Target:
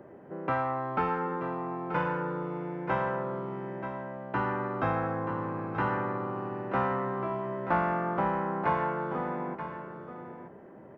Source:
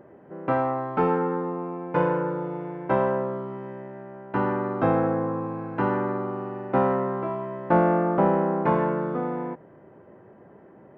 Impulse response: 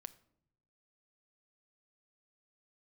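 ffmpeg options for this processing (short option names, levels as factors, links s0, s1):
-filter_complex "[0:a]acrossover=split=120|900[s0][s1][s2];[s1]acompressor=threshold=0.02:ratio=6[s3];[s0][s3][s2]amix=inputs=3:normalize=0,aecho=1:1:931:0.316"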